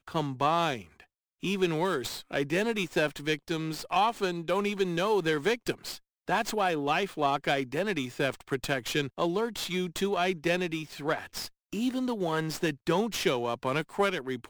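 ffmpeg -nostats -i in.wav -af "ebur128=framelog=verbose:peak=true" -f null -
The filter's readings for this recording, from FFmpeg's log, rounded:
Integrated loudness:
  I:         -29.7 LUFS
  Threshold: -39.9 LUFS
Loudness range:
  LRA:         1.9 LU
  Threshold: -49.9 LUFS
  LRA low:   -30.9 LUFS
  LRA high:  -29.0 LUFS
True peak:
  Peak:      -13.6 dBFS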